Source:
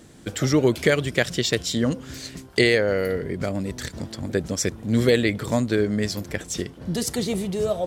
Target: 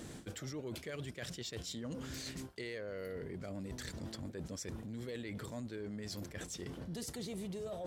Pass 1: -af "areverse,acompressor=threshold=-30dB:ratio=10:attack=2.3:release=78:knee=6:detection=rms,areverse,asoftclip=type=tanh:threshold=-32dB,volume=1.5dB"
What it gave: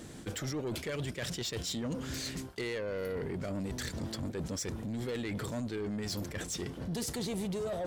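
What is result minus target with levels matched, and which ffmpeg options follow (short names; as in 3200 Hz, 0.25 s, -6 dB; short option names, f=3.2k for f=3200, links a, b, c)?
compressor: peak gain reduction -9.5 dB
-af "areverse,acompressor=threshold=-40.5dB:ratio=10:attack=2.3:release=78:knee=6:detection=rms,areverse,asoftclip=type=tanh:threshold=-32dB,volume=1.5dB"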